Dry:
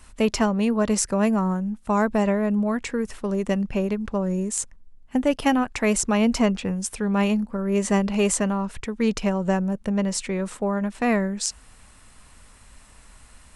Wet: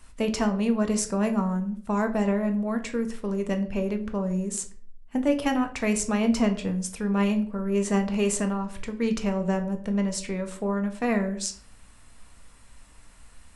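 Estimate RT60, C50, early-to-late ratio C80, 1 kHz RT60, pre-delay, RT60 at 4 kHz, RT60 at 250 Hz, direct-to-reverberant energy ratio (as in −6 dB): 0.50 s, 13.0 dB, 17.0 dB, 0.45 s, 4 ms, 0.35 s, 0.65 s, 6.0 dB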